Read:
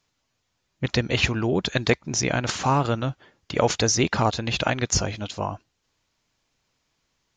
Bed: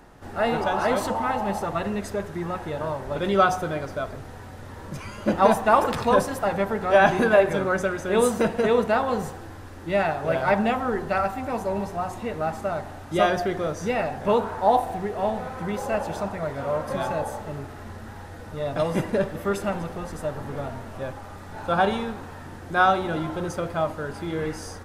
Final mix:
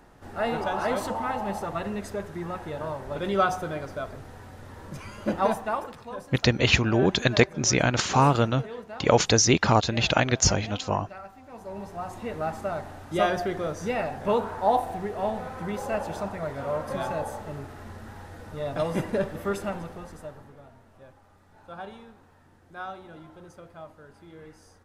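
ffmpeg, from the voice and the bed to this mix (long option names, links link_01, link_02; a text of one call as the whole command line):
ffmpeg -i stem1.wav -i stem2.wav -filter_complex "[0:a]adelay=5500,volume=1.5dB[link_01];[1:a]volume=11.5dB,afade=type=out:start_time=5.27:duration=0.69:silence=0.188365,afade=type=in:start_time=11.48:duration=0.86:silence=0.16788,afade=type=out:start_time=19.48:duration=1.08:silence=0.16788[link_02];[link_01][link_02]amix=inputs=2:normalize=0" out.wav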